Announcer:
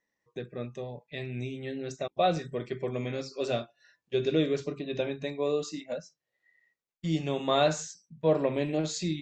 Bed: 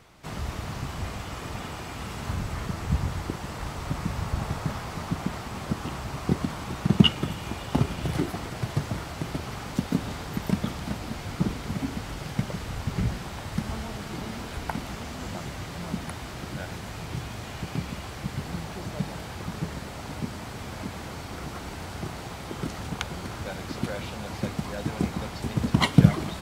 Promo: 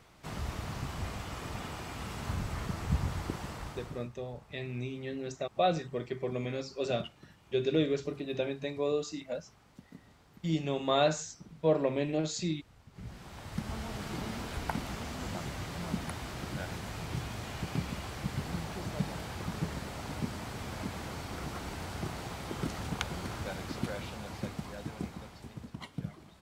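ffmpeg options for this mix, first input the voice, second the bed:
ffmpeg -i stem1.wav -i stem2.wav -filter_complex "[0:a]adelay=3400,volume=-2dB[link_01];[1:a]volume=18.5dB,afade=type=out:start_time=3.42:duration=0.67:silence=0.0841395,afade=type=in:start_time=12.92:duration=1.13:silence=0.0707946,afade=type=out:start_time=23.29:duration=2.49:silence=0.1[link_02];[link_01][link_02]amix=inputs=2:normalize=0" out.wav

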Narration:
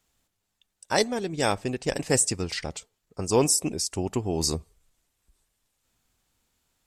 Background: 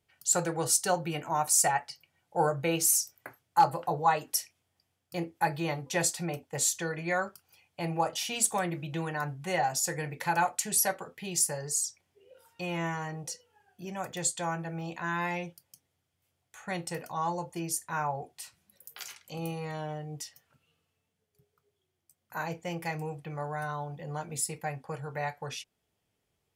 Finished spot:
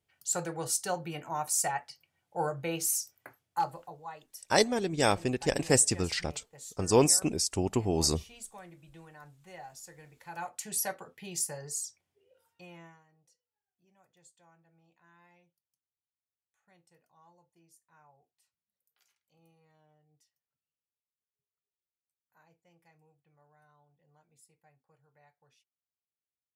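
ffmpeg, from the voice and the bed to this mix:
ffmpeg -i stem1.wav -i stem2.wav -filter_complex "[0:a]adelay=3600,volume=-1dB[link_01];[1:a]volume=8dB,afade=type=out:start_time=3.42:duration=0.54:silence=0.211349,afade=type=in:start_time=10.25:duration=0.53:silence=0.223872,afade=type=out:start_time=11.72:duration=1.32:silence=0.0562341[link_02];[link_01][link_02]amix=inputs=2:normalize=0" out.wav

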